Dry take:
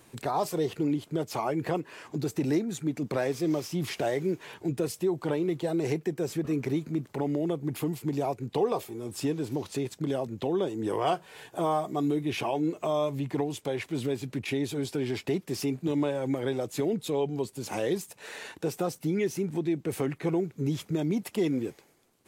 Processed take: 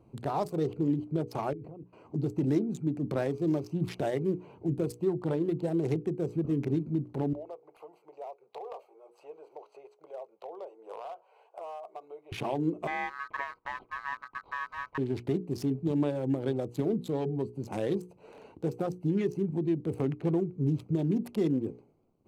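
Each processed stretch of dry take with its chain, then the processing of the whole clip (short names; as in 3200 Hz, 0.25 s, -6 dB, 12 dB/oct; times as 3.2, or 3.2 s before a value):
1.53–1.93 low shelf 480 Hz +6.5 dB + level quantiser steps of 22 dB
7.33–12.32 inverse Chebyshev high-pass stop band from 280 Hz + high shelf 3100 Hz -6.5 dB + compressor 12:1, threshold -32 dBFS
12.87–14.98 LPF 1400 Hz + ring modulator 1400 Hz
whole clip: Wiener smoothing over 25 samples; low shelf 320 Hz +7.5 dB; notches 60/120/180/240/300/360/420/480 Hz; gain -3.5 dB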